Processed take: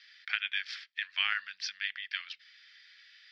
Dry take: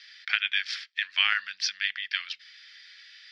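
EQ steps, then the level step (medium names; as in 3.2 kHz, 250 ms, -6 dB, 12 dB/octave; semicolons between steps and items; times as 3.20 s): peaking EQ 290 Hz -7.5 dB 0.93 oct; treble shelf 6.8 kHz -12 dB; -5.0 dB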